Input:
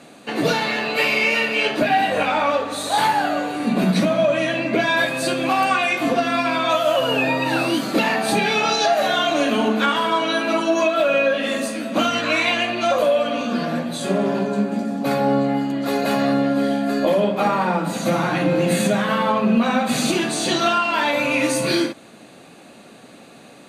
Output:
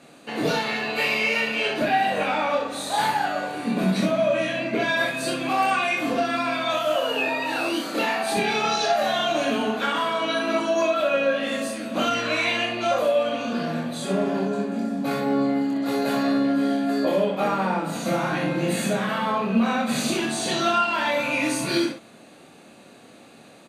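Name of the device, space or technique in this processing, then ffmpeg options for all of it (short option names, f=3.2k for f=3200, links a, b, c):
slapback doubling: -filter_complex "[0:a]asplit=3[a][b][c];[b]adelay=26,volume=-3dB[d];[c]adelay=62,volume=-5dB[e];[a][d][e]amix=inputs=3:normalize=0,asettb=1/sr,asplit=3[f][g][h];[f]atrim=end=6.964[i];[g]atrim=start=6.96:end=8.37,asetpts=PTS-STARTPTS,afade=t=in:d=0.004:c=qsin,afade=t=out:st=1.406:d=0.004:c=qsin,highpass=290[j];[h]atrim=start=8.366[k];[i][j]acrossfade=d=0.004:c1=hsin:c2=qsin[l];[l][k]acrossfade=d=0.004:c1=qsin:c2=hsin,volume=-6.5dB"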